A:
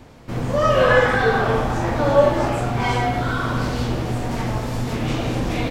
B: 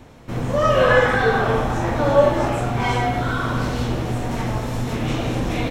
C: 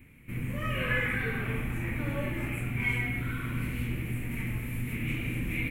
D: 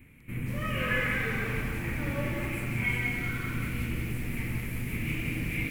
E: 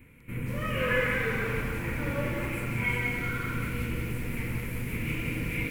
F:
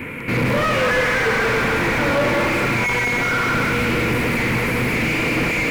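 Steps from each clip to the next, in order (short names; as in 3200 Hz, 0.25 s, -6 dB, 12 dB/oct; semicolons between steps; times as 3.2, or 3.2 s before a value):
notch 4700 Hz, Q 11
EQ curve 190 Hz 0 dB, 300 Hz -3 dB, 730 Hz -20 dB, 1600 Hz -5 dB, 2300 Hz +11 dB, 3600 Hz -12 dB, 5600 Hz -19 dB, 11000 Hz +10 dB; gain -8.5 dB
lo-fi delay 0.181 s, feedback 55%, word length 8-bit, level -4.5 dB
small resonant body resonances 490/990/1400 Hz, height 9 dB, ringing for 40 ms
overdrive pedal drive 37 dB, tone 1300 Hz, clips at -13.5 dBFS; gain +4.5 dB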